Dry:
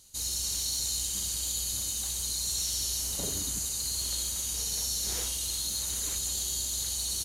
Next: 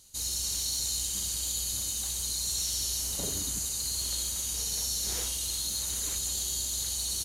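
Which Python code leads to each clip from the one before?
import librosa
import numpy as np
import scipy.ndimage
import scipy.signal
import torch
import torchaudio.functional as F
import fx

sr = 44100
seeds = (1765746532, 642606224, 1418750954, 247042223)

y = x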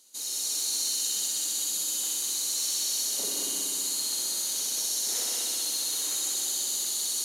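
y = scipy.signal.sosfilt(scipy.signal.butter(4, 260.0, 'highpass', fs=sr, output='sos'), x)
y = fx.echo_heads(y, sr, ms=63, heads='all three', feedback_pct=74, wet_db=-7.5)
y = y * librosa.db_to_amplitude(-1.5)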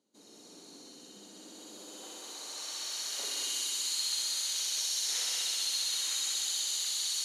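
y = fx.filter_sweep_bandpass(x, sr, from_hz=200.0, to_hz=2600.0, start_s=1.19, end_s=3.56, q=0.85)
y = y * librosa.db_to_amplitude(3.0)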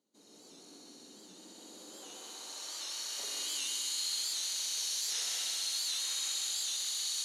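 y = x + 10.0 ** (-3.5 / 20.0) * np.pad(x, (int(147 * sr / 1000.0), 0))[:len(x)]
y = fx.record_warp(y, sr, rpm=78.0, depth_cents=100.0)
y = y * librosa.db_to_amplitude(-4.0)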